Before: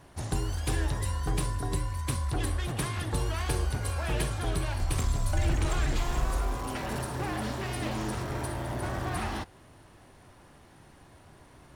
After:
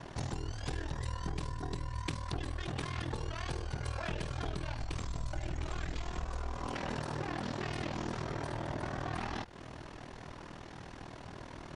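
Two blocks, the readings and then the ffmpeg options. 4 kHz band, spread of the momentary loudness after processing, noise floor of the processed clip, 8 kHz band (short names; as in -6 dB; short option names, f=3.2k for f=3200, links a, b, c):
-5.5 dB, 10 LU, -49 dBFS, -12.5 dB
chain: -af "lowpass=f=7k:w=0.5412,lowpass=f=7k:w=1.3066,equalizer=f=71:w=5.9:g=-13,acompressor=threshold=-42dB:ratio=10,aeval=exprs='val(0)*sin(2*PI*20*n/s)':c=same,volume=10.5dB"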